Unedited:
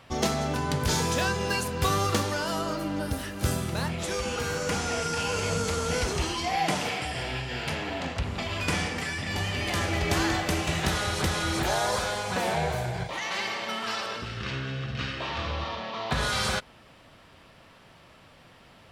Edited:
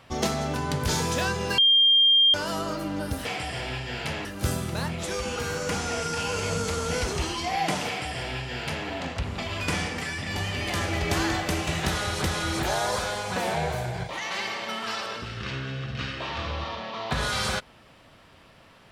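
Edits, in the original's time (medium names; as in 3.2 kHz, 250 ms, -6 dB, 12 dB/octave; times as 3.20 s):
1.58–2.34 s: bleep 3.2 kHz -15 dBFS
6.87–7.87 s: copy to 3.25 s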